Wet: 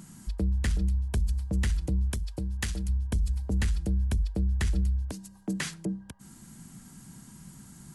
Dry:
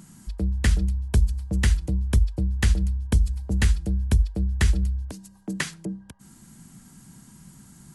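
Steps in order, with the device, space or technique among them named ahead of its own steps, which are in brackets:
soft clipper into limiter (soft clipping −12 dBFS, distortion −21 dB; brickwall limiter −21 dBFS, peak gain reduction 7 dB)
0:02.10–0:02.89: spectral tilt +1.5 dB per octave

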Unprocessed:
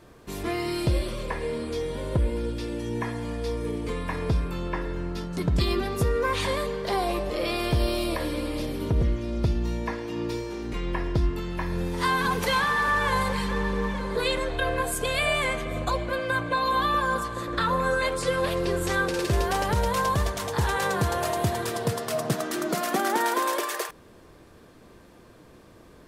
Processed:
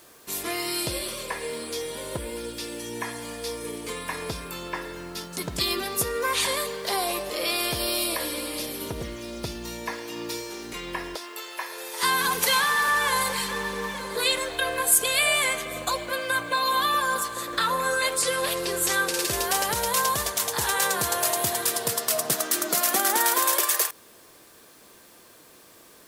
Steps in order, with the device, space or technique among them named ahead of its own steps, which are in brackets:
turntable without a phono preamp (RIAA equalisation recording; white noise bed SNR 33 dB)
0:11.15–0:12.03: high-pass filter 430 Hz 24 dB per octave

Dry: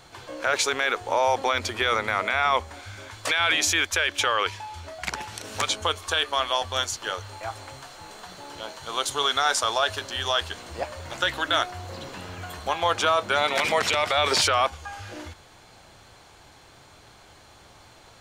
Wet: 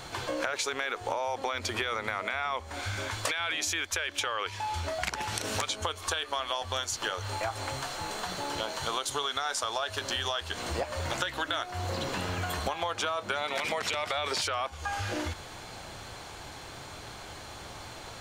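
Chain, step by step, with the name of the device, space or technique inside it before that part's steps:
serial compression, peaks first (downward compressor, threshold −32 dBFS, peak gain reduction 14 dB; downward compressor 2 to 1, threshold −38 dBFS, peak gain reduction 5.5 dB)
level +7.5 dB

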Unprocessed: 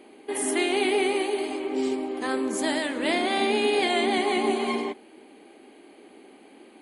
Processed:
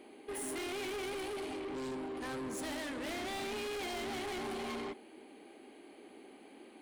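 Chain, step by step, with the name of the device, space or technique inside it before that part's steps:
open-reel tape (soft clipping −33.5 dBFS, distortion −6 dB; parametric band 65 Hz +3.5 dB 1.15 octaves; white noise bed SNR 47 dB)
level −4.5 dB

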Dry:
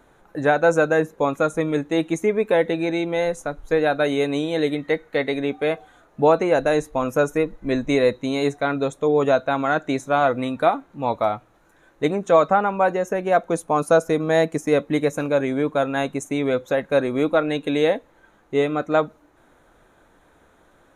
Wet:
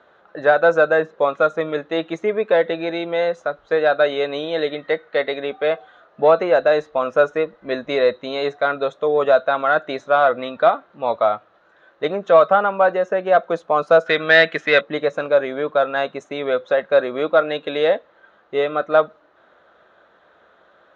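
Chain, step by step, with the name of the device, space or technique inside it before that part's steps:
0:14.06–0:14.81: flat-topped bell 2,400 Hz +14.5 dB
overdrive pedal into a guitar cabinet (mid-hump overdrive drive 9 dB, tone 8,000 Hz, clips at −1.5 dBFS; loudspeaker in its box 100–4,200 Hz, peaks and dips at 130 Hz −8 dB, 280 Hz −8 dB, 600 Hz +5 dB, 890 Hz −5 dB, 1,300 Hz +3 dB, 2,300 Hz −7 dB)

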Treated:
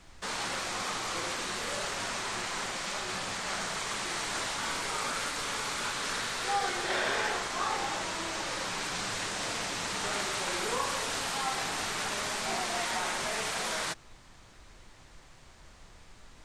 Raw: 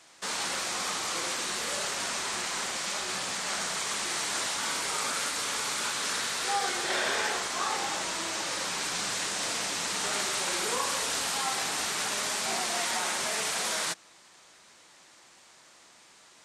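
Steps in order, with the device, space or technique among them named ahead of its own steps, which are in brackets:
car interior (parametric band 100 Hz +7 dB 0.86 octaves; high-shelf EQ 4,500 Hz −8 dB; brown noise bed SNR 19 dB)

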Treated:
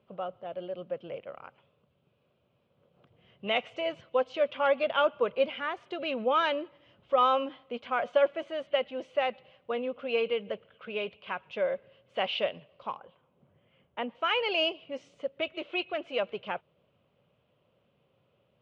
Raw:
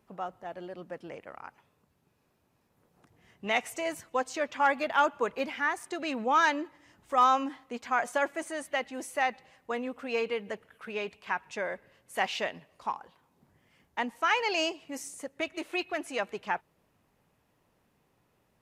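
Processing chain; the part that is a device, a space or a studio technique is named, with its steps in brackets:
guitar cabinet (loudspeaker in its box 76–3,500 Hz, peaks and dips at 130 Hz +4 dB, 290 Hz −6 dB, 550 Hz +9 dB, 870 Hz −7 dB, 1,800 Hz −10 dB, 3,100 Hz +8 dB)
0:12.99–0:14.15: low-pass filter 2,700 Hz 12 dB per octave

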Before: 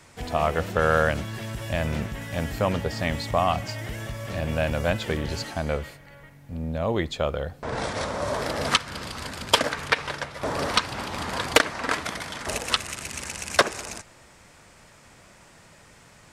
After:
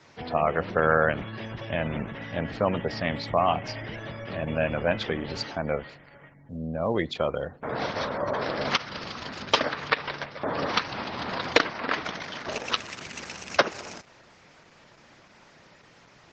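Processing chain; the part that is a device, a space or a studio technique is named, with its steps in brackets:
low-pass filter 6,000 Hz 24 dB per octave
0:04.92–0:05.51: mains-hum notches 50/100/150/200 Hz
noise-suppressed video call (high-pass filter 130 Hz 12 dB per octave; gate on every frequency bin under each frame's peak −25 dB strong; Opus 12 kbit/s 48,000 Hz)

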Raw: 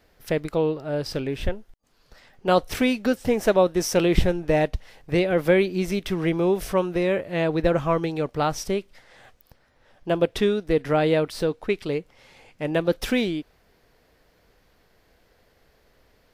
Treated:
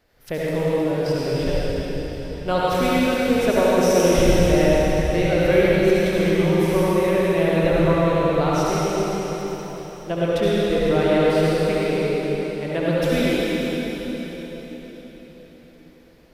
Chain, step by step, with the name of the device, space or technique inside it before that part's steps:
cathedral (convolution reverb RT60 4.7 s, pre-delay 61 ms, DRR −7.5 dB)
level −4 dB

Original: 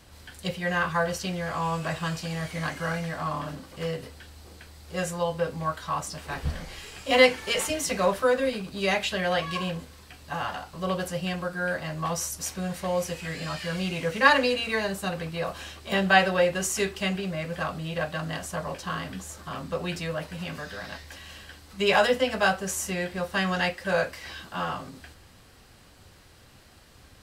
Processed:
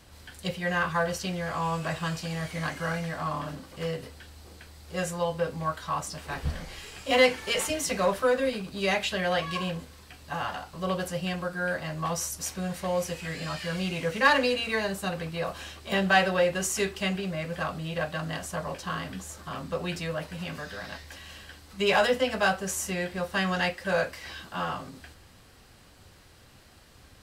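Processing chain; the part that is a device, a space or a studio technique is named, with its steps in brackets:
parallel distortion (in parallel at −4.5 dB: hard clipping −18.5 dBFS, distortion −11 dB)
on the sum: level −5 dB

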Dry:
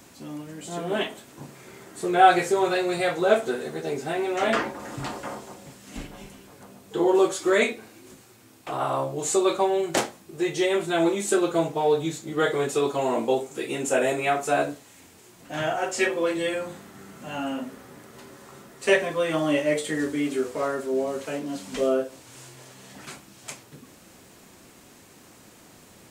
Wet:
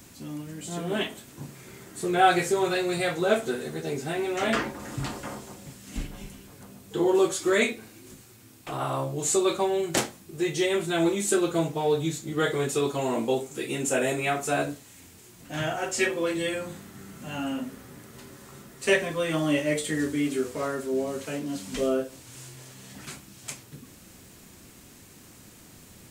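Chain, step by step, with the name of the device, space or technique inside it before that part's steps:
smiley-face EQ (low-shelf EQ 140 Hz +8 dB; parametric band 710 Hz −5 dB 2 octaves; high-shelf EQ 9,500 Hz +5 dB)

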